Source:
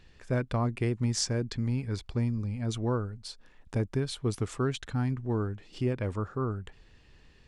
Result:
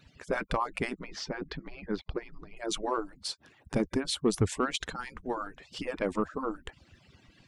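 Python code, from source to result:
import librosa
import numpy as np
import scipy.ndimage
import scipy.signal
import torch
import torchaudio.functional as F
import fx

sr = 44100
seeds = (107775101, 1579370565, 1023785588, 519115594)

y = fx.hpss_only(x, sr, part='percussive')
y = 10.0 ** (-20.0 / 20.0) * np.tanh(y / 10.0 ** (-20.0 / 20.0))
y = fx.air_absorb(y, sr, metres=290.0, at=(0.99, 2.57))
y = y * librosa.db_to_amplitude(6.5)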